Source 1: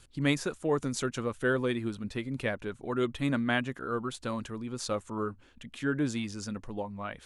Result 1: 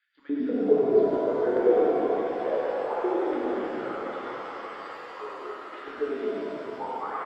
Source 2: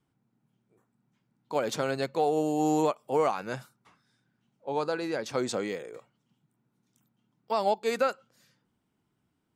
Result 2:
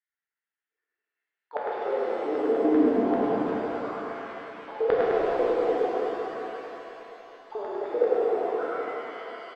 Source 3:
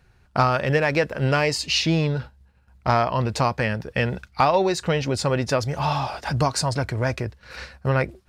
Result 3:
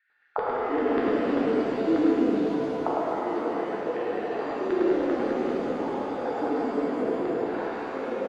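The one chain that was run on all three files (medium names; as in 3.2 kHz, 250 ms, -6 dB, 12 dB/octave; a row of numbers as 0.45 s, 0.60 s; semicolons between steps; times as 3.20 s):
backward echo that repeats 298 ms, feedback 56%, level -13.5 dB; gate -55 dBFS, range -11 dB; treble shelf 3.6 kHz +8 dB; compression 3:1, threshold -22 dBFS; auto-wah 310–1900 Hz, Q 5.5, down, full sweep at -22.5 dBFS; small resonant body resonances 280/480/860 Hz, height 8 dB; LFO high-pass square 5.1 Hz 400–1900 Hz; rippled Chebyshev low-pass 4.9 kHz, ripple 9 dB; on a send: frequency-shifting echo 104 ms, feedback 57%, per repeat -31 Hz, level -4 dB; on the sum: pitch-shifted reverb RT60 3.4 s, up +7 st, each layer -8 dB, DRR -5.5 dB; normalise loudness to -27 LUFS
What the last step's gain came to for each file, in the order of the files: +6.0 dB, +5.5 dB, +7.0 dB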